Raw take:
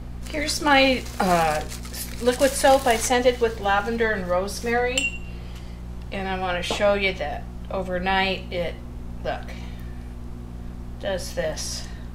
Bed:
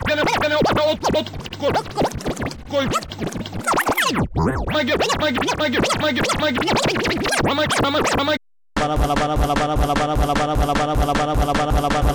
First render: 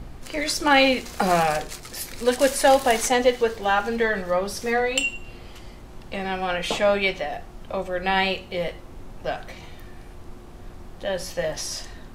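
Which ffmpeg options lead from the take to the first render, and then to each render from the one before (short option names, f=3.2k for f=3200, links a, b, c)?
-af "bandreject=f=60:t=h:w=4,bandreject=f=120:t=h:w=4,bandreject=f=180:t=h:w=4,bandreject=f=240:t=h:w=4"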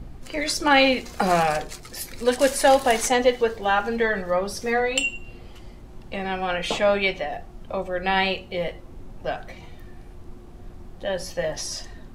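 -af "afftdn=nr=6:nf=-42"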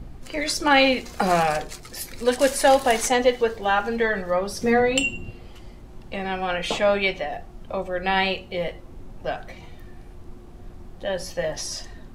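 -filter_complex "[0:a]asettb=1/sr,asplit=3[a][b][c];[a]atrim=end=4.614[d];[b]atrim=start=4.61:end=5.31,asetpts=PTS-STARTPTS,afade=t=in:d=0.004:c=qsin,afade=t=out:st=0.696:d=0.004:c=qsin,equalizer=f=150:w=0.43:g=10.5[e];[c]atrim=start=5.306[f];[d][e]acrossfade=d=0.004:c1=hsin:c2=qsin[g];[g][f]acrossfade=d=0.004:c1=qsin:c2=hsin"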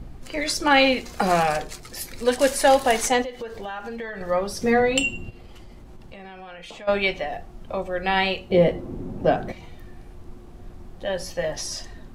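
-filter_complex "[0:a]asettb=1/sr,asplit=3[a][b][c];[a]atrim=end=3.224[d];[b]atrim=start=3.22:end=4.21,asetpts=PTS-STARTPTS,afade=t=in:d=0.004:c=qsin,afade=t=out:st=0.986:d=0.004:c=qsin,acompressor=threshold=-30dB:ratio=6:attack=3.2:release=140:knee=1:detection=peak[e];[c]atrim=start=4.206[f];[d][e]acrossfade=d=0.004:c1=hsin:c2=qsin[g];[g][f]acrossfade=d=0.004:c1=qsin:c2=hsin,asplit=3[h][i][j];[h]afade=t=out:st=5.29:d=0.02[k];[i]acompressor=threshold=-38dB:ratio=6:attack=3.2:release=140:knee=1:detection=peak,afade=t=in:st=5.29:d=0.02,afade=t=out:st=6.87:d=0.02[l];[j]afade=t=in:st=6.87:d=0.02[m];[k][l][m]amix=inputs=3:normalize=0,asettb=1/sr,asplit=3[n][o][p];[n]atrim=end=8.504[q];[o]atrim=start=8.5:end=9.52,asetpts=PTS-STARTPTS,afade=t=in:d=0.004:c=qsin,afade=t=out:st=1.016:d=0.004:c=qsin,equalizer=f=250:w=0.39:g=15[r];[p]atrim=start=9.516[s];[q][r]acrossfade=d=0.004:c1=hsin:c2=qsin[t];[t][s]acrossfade=d=0.004:c1=qsin:c2=hsin"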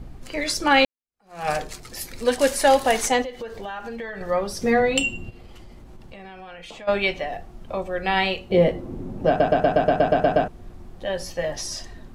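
-filter_complex "[0:a]asplit=12[a][b][c][d][e][f][g][h][i][j][k][l];[a]atrim=end=0.85,asetpts=PTS-STARTPTS,afade=t=out:st=0.846:d=0.004:c=hsin[m];[b]atrim=start=0.85:end=9.402,asetpts=PTS-STARTPTS,afade=t=in:d=0.64:c=exp[n];[c]atrim=start=9.278:end=9.402[o];[d]atrim=start=9.278:end=9.402[p];[e]atrim=start=9.278:end=9.402[q];[f]atrim=start=9.278:end=9.402[r];[g]atrim=start=9.278:end=9.402[s];[h]atrim=start=9.278:end=9.402[t];[i]atrim=start=9.278:end=9.402[u];[j]atrim=start=9.278:end=9.402[v];[k]atrim=start=9.278:end=9.402[w];[l]atrim=start=10.478[x];[m][n]concat=n=2:v=0:a=1[y];[y][o]acrossfade=d=0.004:c1=hsin:c2=hsin[z];[z][p]acrossfade=d=0.004:c1=hsin:c2=hsin[aa];[aa][q]acrossfade=d=0.004:c1=hsin:c2=hsin[ab];[ab][r]acrossfade=d=0.004:c1=hsin:c2=hsin[ac];[ac][s]acrossfade=d=0.004:c1=hsin:c2=hsin[ad];[ad][t]acrossfade=d=0.004:c1=hsin:c2=hsin[ae];[ae][u]acrossfade=d=0.004:c1=hsin:c2=hsin[af];[af][v]acrossfade=d=0.004:c1=hsin:c2=hsin[ag];[ag][w]acrossfade=d=0.004:c1=hsin:c2=hsin[ah];[ah][x]acrossfade=d=0.004:c1=hsin:c2=hsin"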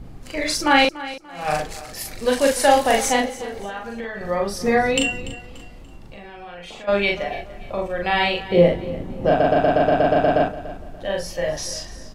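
-filter_complex "[0:a]asplit=2[a][b];[b]adelay=40,volume=-2dB[c];[a][c]amix=inputs=2:normalize=0,aecho=1:1:290|580|870:0.158|0.0523|0.0173"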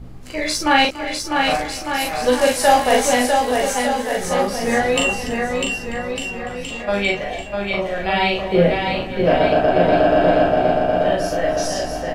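-filter_complex "[0:a]asplit=2[a][b];[b]adelay=16,volume=-5.5dB[c];[a][c]amix=inputs=2:normalize=0,aecho=1:1:650|1202|1672|2071|2411:0.631|0.398|0.251|0.158|0.1"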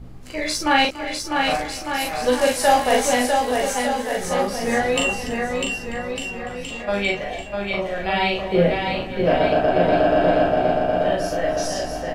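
-af "volume=-2.5dB"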